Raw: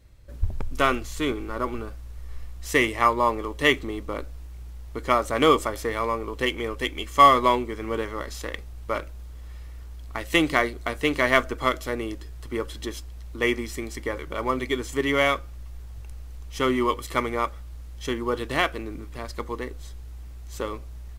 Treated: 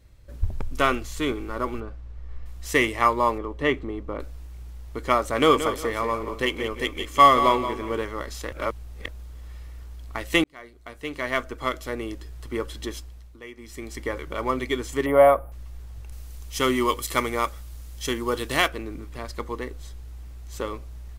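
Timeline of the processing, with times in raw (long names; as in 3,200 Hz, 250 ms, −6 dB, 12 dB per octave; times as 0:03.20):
0:01.80–0:02.46: head-to-tape spacing loss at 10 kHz 20 dB
0:03.38–0:04.20: low-pass filter 1,200 Hz 6 dB per octave
0:05.20–0:08.02: repeating echo 177 ms, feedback 28%, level −10 dB
0:08.52–0:09.08: reverse
0:10.44–0:12.31: fade in
0:12.97–0:14.01: duck −18.5 dB, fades 0.46 s
0:15.06–0:15.52: drawn EQ curve 400 Hz 0 dB, 620 Hz +13 dB, 6,500 Hz −29 dB, 10,000 Hz +6 dB
0:16.12–0:18.68: high-shelf EQ 4,200 Hz +11 dB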